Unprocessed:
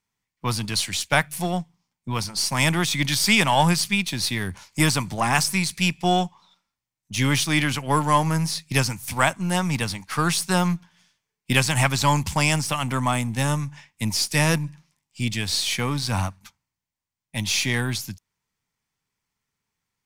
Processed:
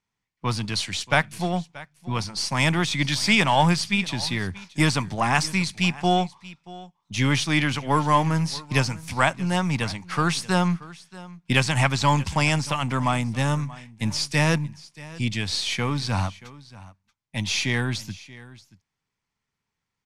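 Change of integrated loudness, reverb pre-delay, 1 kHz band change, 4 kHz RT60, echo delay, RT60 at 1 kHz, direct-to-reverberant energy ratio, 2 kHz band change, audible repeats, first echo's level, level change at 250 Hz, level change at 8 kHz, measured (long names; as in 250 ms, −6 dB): −1.0 dB, no reverb audible, 0.0 dB, no reverb audible, 631 ms, no reverb audible, no reverb audible, −0.5 dB, 1, −19.5 dB, 0.0 dB, −6.0 dB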